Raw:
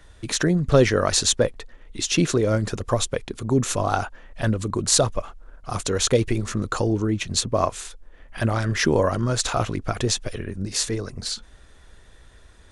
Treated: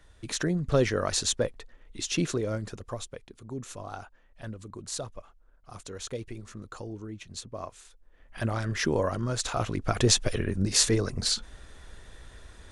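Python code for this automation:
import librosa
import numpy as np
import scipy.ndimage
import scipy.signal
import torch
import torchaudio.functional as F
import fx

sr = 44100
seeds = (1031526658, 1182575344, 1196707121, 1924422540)

y = fx.gain(x, sr, db=fx.line((2.25, -7.5), (3.24, -17.0), (7.84, -17.0), (8.39, -7.0), (9.52, -7.0), (10.14, 2.0)))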